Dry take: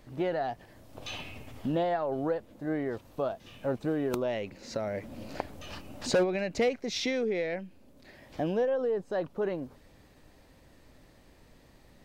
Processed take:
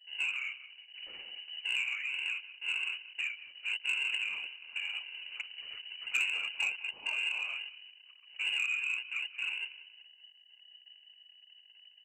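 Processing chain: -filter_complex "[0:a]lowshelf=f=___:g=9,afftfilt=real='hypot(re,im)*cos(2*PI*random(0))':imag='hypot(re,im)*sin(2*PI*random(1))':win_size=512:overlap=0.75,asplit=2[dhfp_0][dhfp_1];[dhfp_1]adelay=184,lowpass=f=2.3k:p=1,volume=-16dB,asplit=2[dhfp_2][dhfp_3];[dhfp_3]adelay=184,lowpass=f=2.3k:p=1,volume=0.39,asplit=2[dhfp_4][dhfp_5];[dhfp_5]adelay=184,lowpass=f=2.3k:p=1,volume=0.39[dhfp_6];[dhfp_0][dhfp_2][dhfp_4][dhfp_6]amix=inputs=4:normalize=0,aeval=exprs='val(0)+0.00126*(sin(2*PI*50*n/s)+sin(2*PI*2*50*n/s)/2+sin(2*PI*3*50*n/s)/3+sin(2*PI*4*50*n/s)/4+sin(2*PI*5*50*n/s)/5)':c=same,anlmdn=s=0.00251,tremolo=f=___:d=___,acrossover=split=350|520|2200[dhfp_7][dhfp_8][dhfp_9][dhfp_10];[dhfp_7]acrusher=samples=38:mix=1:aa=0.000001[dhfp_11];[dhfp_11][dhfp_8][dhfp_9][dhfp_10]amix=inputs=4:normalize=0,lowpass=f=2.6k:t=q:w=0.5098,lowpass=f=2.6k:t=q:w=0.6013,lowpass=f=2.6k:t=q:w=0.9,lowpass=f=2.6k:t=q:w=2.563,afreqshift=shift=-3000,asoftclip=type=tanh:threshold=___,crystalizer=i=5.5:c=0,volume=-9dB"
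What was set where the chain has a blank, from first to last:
470, 120, 0.261, -19.5dB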